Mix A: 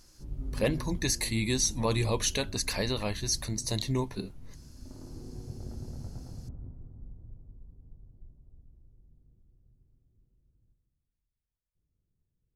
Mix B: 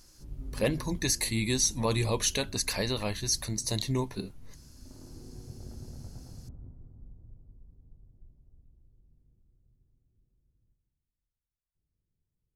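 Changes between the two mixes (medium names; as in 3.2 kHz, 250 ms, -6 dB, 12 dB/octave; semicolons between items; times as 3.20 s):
background -3.5 dB; master: add treble shelf 7.8 kHz +4 dB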